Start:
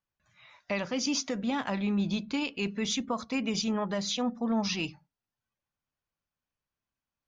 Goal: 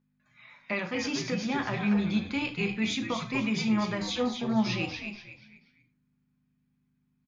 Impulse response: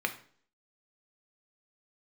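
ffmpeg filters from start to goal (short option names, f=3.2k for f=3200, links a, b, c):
-filter_complex "[0:a]aeval=exprs='val(0)+0.000631*(sin(2*PI*50*n/s)+sin(2*PI*2*50*n/s)/2+sin(2*PI*3*50*n/s)/3+sin(2*PI*4*50*n/s)/4+sin(2*PI*5*50*n/s)/5)':c=same,asplit=5[a][b][c][d][e];[b]adelay=241,afreqshift=-110,volume=-6.5dB[f];[c]adelay=482,afreqshift=-220,volume=-16.1dB[g];[d]adelay=723,afreqshift=-330,volume=-25.8dB[h];[e]adelay=964,afreqshift=-440,volume=-35.4dB[i];[a][f][g][h][i]amix=inputs=5:normalize=0[j];[1:a]atrim=start_sample=2205,afade=t=out:st=0.18:d=0.01,atrim=end_sample=8379[k];[j][k]afir=irnorm=-1:irlink=0,volume=-4.5dB"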